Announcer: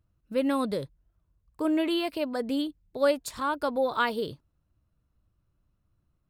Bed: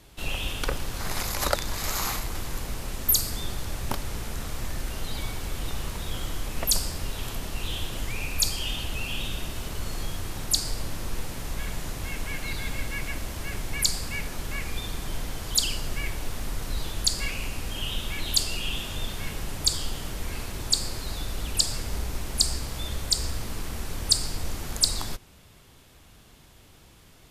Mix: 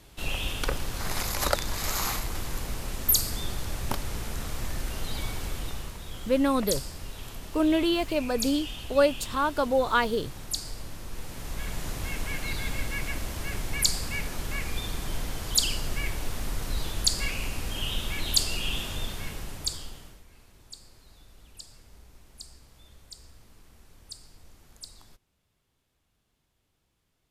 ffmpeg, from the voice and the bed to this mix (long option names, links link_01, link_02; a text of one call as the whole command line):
ffmpeg -i stem1.wav -i stem2.wav -filter_complex "[0:a]adelay=5950,volume=2.5dB[link_01];[1:a]volume=7dB,afade=type=out:start_time=5.44:duration=0.53:silence=0.446684,afade=type=in:start_time=11.09:duration=0.84:silence=0.421697,afade=type=out:start_time=18.82:duration=1.42:silence=0.0794328[link_02];[link_01][link_02]amix=inputs=2:normalize=0" out.wav